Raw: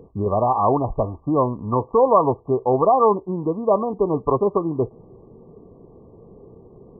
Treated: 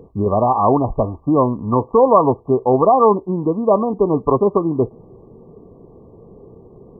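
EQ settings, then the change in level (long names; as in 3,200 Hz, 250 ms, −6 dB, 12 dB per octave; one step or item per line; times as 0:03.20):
dynamic equaliser 240 Hz, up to +4 dB, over −32 dBFS, Q 1.6
+3.0 dB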